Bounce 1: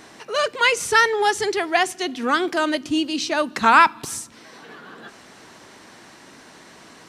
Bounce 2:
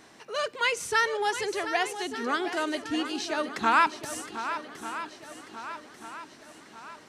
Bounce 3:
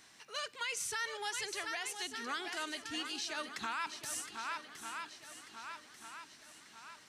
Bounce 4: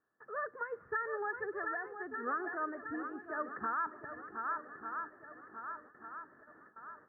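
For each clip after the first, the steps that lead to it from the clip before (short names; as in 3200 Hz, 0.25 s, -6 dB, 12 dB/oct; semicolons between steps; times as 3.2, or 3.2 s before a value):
swung echo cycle 1.191 s, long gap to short 1.5:1, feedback 47%, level -11 dB; gain -8.5 dB
passive tone stack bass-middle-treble 5-5-5; limiter -32.5 dBFS, peak gain reduction 11 dB; gain +4.5 dB
gate with hold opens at -45 dBFS; rippled Chebyshev low-pass 1800 Hz, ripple 9 dB; gain +8.5 dB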